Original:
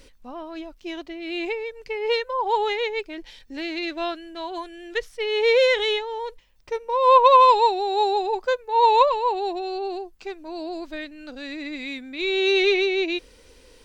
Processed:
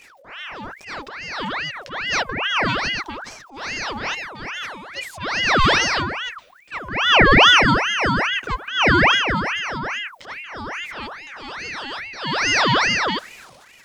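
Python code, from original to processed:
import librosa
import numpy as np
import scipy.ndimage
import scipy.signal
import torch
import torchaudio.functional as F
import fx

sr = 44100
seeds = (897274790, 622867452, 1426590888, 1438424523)

y = fx.transient(x, sr, attack_db=-11, sustain_db=8)
y = fx.ring_lfo(y, sr, carrier_hz=1500.0, swing_pct=65, hz=2.4)
y = y * 10.0 ** (5.0 / 20.0)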